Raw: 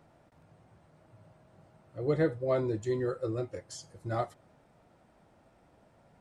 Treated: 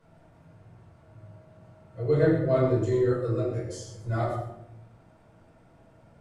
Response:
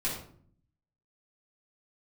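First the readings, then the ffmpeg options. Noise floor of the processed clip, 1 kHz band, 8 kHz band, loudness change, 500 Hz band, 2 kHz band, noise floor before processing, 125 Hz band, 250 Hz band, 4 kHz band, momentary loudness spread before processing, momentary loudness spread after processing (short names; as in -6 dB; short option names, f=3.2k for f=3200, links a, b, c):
-58 dBFS, +4.0 dB, +2.0 dB, +6.5 dB, +6.0 dB, +4.5 dB, -64 dBFS, +9.0 dB, +6.5 dB, +2.0 dB, 14 LU, 14 LU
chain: -filter_complex "[1:a]atrim=start_sample=2205,asetrate=26460,aresample=44100[a];[0:a][a]afir=irnorm=-1:irlink=0,volume=-5.5dB"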